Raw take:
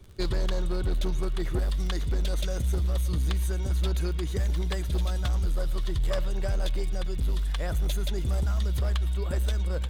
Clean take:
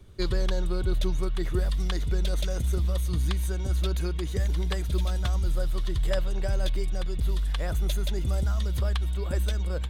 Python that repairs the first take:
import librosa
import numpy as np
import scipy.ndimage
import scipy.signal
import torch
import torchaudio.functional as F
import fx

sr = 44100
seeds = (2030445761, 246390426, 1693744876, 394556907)

y = fx.fix_declip(x, sr, threshold_db=-21.5)
y = fx.fix_declick_ar(y, sr, threshold=6.5)
y = fx.fix_echo_inverse(y, sr, delay_ms=112, level_db=-21.0)